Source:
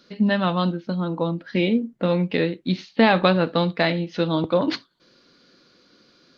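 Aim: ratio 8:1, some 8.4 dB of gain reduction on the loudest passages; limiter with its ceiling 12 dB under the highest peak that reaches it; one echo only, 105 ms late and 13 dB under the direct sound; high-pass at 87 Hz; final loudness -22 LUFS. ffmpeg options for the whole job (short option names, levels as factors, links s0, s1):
-af "highpass=87,acompressor=threshold=0.1:ratio=8,alimiter=limit=0.106:level=0:latency=1,aecho=1:1:105:0.224,volume=2.37"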